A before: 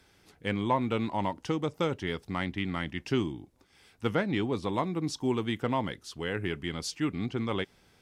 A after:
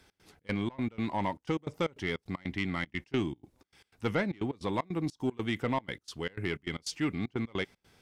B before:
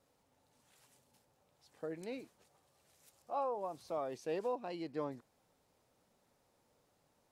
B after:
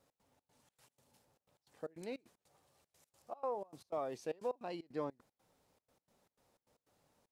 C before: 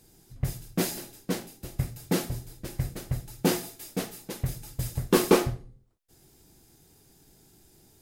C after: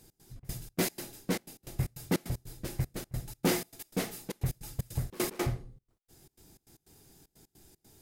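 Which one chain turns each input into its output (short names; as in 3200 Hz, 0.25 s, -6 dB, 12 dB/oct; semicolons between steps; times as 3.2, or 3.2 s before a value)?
dynamic EQ 2100 Hz, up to +6 dB, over -53 dBFS, Q 5.3; soft clip -20 dBFS; step gate "x.xx.xx.x.xxxx." 153 bpm -24 dB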